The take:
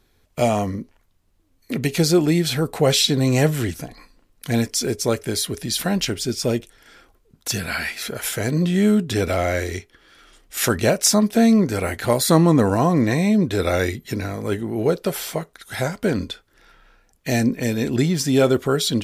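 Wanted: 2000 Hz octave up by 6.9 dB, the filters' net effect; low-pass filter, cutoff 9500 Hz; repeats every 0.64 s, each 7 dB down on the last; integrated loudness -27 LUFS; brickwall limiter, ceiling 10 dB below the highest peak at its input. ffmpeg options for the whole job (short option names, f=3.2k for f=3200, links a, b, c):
-af "lowpass=9.5k,equalizer=f=2k:t=o:g=8.5,alimiter=limit=-11.5dB:level=0:latency=1,aecho=1:1:640|1280|1920|2560|3200:0.447|0.201|0.0905|0.0407|0.0183,volume=-5dB"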